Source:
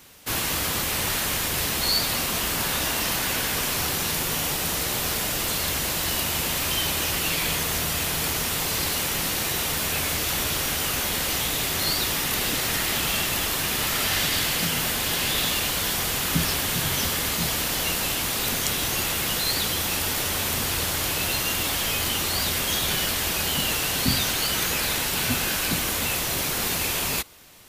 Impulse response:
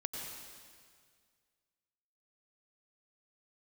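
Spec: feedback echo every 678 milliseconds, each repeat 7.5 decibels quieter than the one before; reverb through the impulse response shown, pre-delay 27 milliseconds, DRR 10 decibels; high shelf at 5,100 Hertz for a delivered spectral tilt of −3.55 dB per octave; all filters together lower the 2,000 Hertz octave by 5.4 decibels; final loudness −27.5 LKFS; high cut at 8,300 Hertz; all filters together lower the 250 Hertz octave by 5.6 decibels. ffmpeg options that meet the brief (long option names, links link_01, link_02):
-filter_complex "[0:a]lowpass=8300,equalizer=frequency=250:width_type=o:gain=-8,equalizer=frequency=2000:width_type=o:gain=-5.5,highshelf=frequency=5100:gain=-8,aecho=1:1:678|1356|2034|2712|3390:0.422|0.177|0.0744|0.0312|0.0131,asplit=2[link_01][link_02];[1:a]atrim=start_sample=2205,adelay=27[link_03];[link_02][link_03]afir=irnorm=-1:irlink=0,volume=-11dB[link_04];[link_01][link_04]amix=inputs=2:normalize=0,volume=0.5dB"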